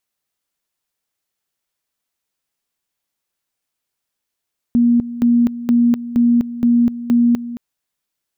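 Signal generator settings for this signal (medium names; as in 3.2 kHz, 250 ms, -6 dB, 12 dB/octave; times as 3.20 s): two-level tone 238 Hz -9.5 dBFS, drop 14.5 dB, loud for 0.25 s, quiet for 0.22 s, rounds 6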